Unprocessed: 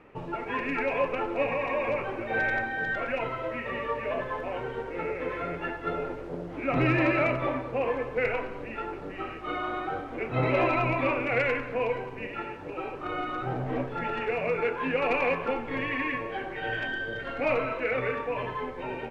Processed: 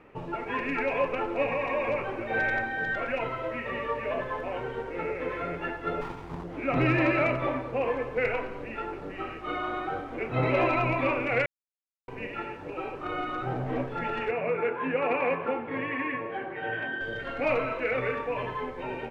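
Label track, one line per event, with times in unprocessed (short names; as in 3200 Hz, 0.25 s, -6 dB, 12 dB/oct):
6.010000	6.440000	minimum comb delay 0.85 ms
11.460000	12.080000	mute
14.310000	17.010000	BPF 120–2300 Hz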